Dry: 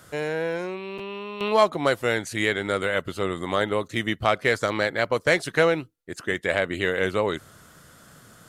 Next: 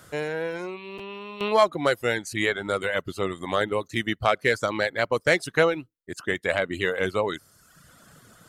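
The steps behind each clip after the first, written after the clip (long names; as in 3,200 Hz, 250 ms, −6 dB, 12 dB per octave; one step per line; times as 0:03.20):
reverb reduction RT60 0.88 s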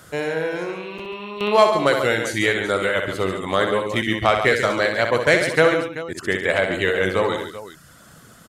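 multi-tap delay 63/139/154/213/384 ms −6.5/−8.5/−20/−16.5/−14.5 dB
level +4 dB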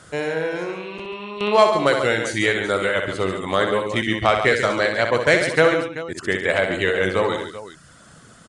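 downsampling to 22,050 Hz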